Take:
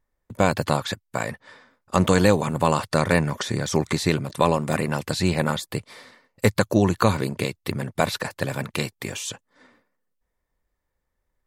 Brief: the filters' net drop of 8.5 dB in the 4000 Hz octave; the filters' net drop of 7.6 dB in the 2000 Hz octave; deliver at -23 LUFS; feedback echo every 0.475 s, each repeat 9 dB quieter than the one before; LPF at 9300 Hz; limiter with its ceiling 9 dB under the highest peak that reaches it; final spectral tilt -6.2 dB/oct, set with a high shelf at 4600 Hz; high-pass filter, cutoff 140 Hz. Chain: HPF 140 Hz; LPF 9300 Hz; bell 2000 Hz -8 dB; bell 4000 Hz -4.5 dB; high shelf 4600 Hz -6.5 dB; limiter -14.5 dBFS; feedback echo 0.475 s, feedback 35%, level -9 dB; gain +6 dB

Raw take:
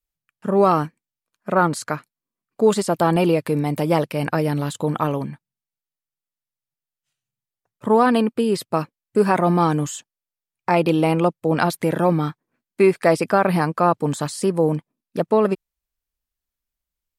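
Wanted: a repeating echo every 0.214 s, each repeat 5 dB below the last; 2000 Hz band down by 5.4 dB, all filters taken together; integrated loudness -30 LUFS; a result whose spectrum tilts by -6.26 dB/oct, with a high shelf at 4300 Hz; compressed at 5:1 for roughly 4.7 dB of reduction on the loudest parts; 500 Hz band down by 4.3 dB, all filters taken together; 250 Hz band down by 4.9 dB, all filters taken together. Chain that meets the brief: bell 250 Hz -6.5 dB; bell 500 Hz -3 dB; bell 2000 Hz -6.5 dB; high shelf 4300 Hz -4 dB; compressor 5:1, threshold -20 dBFS; feedback echo 0.214 s, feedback 56%, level -5 dB; gain -4 dB

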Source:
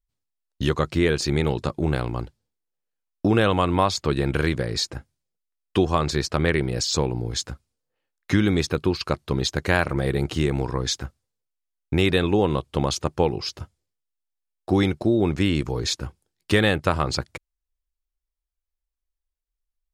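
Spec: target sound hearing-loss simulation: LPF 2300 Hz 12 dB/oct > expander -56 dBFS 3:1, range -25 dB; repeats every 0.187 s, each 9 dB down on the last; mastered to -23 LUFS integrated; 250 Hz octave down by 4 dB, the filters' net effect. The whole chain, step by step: LPF 2300 Hz 12 dB/oct; bell 250 Hz -6 dB; feedback echo 0.187 s, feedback 35%, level -9 dB; expander -56 dBFS 3:1, range -25 dB; gain +2.5 dB

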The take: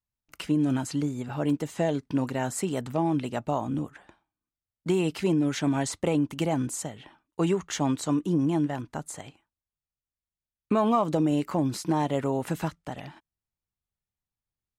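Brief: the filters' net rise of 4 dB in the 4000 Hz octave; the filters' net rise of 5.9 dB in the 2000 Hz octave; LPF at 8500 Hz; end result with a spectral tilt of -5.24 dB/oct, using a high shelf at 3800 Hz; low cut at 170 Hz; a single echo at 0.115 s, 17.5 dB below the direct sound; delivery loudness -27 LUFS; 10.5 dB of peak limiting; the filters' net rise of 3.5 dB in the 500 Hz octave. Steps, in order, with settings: HPF 170 Hz; LPF 8500 Hz; bell 500 Hz +4.5 dB; bell 2000 Hz +7 dB; high shelf 3800 Hz -4 dB; bell 4000 Hz +5 dB; limiter -19.5 dBFS; echo 0.115 s -17.5 dB; gain +3 dB

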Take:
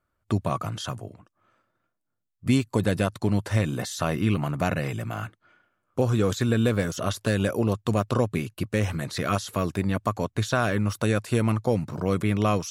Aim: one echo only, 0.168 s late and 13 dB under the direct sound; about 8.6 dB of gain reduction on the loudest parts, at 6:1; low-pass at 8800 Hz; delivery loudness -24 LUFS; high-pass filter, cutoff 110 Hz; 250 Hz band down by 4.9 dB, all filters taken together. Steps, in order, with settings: HPF 110 Hz; LPF 8800 Hz; bell 250 Hz -6 dB; compressor 6:1, threshold -30 dBFS; echo 0.168 s -13 dB; gain +11.5 dB

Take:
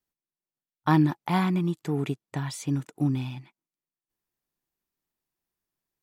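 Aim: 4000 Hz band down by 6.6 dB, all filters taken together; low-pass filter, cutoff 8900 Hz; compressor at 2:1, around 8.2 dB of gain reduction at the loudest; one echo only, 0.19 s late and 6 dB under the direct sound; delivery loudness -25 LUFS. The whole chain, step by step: LPF 8900 Hz; bell 4000 Hz -8.5 dB; compressor 2:1, threshold -31 dBFS; echo 0.19 s -6 dB; gain +7.5 dB

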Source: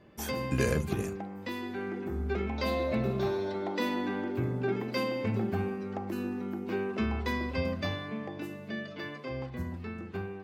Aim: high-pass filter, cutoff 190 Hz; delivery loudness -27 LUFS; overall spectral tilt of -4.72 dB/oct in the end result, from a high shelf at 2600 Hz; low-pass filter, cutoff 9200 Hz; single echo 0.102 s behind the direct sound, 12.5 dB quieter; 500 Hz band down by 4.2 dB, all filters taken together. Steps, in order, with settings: HPF 190 Hz; LPF 9200 Hz; bell 500 Hz -5 dB; high shelf 2600 Hz -4.5 dB; echo 0.102 s -12.5 dB; gain +9.5 dB

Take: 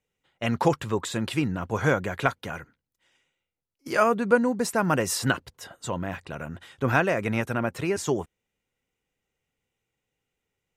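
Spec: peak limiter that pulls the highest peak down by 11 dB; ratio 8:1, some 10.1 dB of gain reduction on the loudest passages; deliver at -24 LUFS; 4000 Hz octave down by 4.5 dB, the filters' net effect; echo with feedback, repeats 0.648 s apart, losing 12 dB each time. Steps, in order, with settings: bell 4000 Hz -6.5 dB; compressor 8:1, threshold -25 dBFS; limiter -24 dBFS; feedback echo 0.648 s, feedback 25%, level -12 dB; gain +11 dB

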